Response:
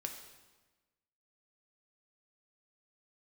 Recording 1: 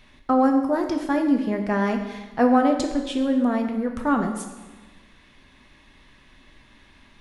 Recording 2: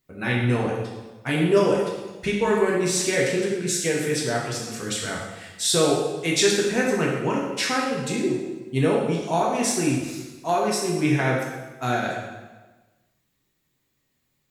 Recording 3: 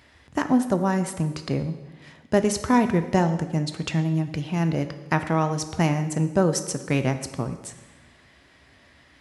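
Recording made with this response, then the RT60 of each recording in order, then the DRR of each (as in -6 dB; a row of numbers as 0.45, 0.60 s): 1; 1.2, 1.2, 1.2 s; 3.5, -4.0, 8.0 dB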